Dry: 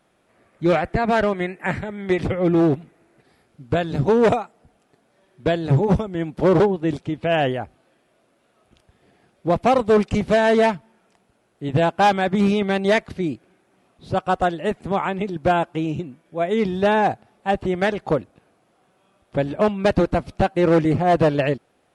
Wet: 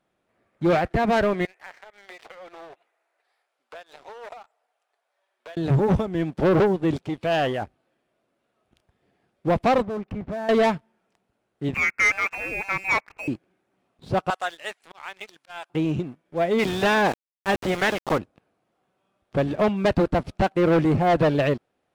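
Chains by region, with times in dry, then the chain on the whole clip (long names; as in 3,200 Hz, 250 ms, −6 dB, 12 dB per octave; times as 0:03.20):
0:01.45–0:05.57: high-pass filter 610 Hz 24 dB per octave + downward compressor 3 to 1, threshold −43 dBFS
0:07.06–0:07.62: spectral tilt +1.5 dB per octave + saturating transformer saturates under 940 Hz
0:09.82–0:10.49: low-pass filter 1,500 Hz + parametric band 470 Hz −5.5 dB 0.31 octaves + downward compressor 4 to 1, threshold −31 dBFS
0:11.74–0:13.28: high-pass filter 680 Hz + voice inversion scrambler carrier 2,900 Hz
0:14.30–0:15.70: Bessel high-pass filter 1,500 Hz + high-shelf EQ 4,800 Hz +6.5 dB + volume swells 338 ms
0:16.58–0:18.17: ceiling on every frequency bin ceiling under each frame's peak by 13 dB + high-pass filter 160 Hz 6 dB per octave + centre clipping without the shift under −31 dBFS
whole clip: high-shelf EQ 7,400 Hz −7 dB; leveller curve on the samples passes 2; level −6.5 dB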